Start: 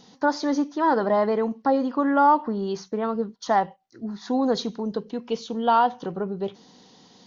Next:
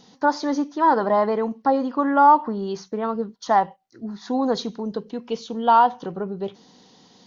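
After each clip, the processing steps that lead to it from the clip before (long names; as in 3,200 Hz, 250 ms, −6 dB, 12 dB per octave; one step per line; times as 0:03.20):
dynamic equaliser 970 Hz, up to +5 dB, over −31 dBFS, Q 1.8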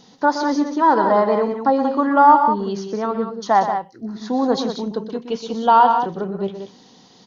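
loudspeakers that aren't time-aligned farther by 42 metres −10 dB, 63 metres −8 dB
level +2.5 dB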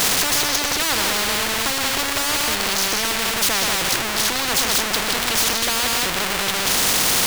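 converter with a step at zero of −24.5 dBFS
every bin compressed towards the loudest bin 10 to 1
level −4.5 dB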